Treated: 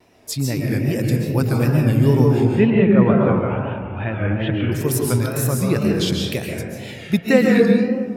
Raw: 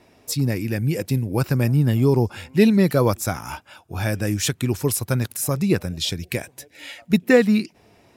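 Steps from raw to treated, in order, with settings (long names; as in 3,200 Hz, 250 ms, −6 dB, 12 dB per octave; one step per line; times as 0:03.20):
0:02.51–0:04.72: Chebyshev low-pass filter 3,100 Hz, order 5
convolution reverb RT60 2.1 s, pre-delay 95 ms, DRR −1.5 dB
tape wow and flutter 81 cents
level −1 dB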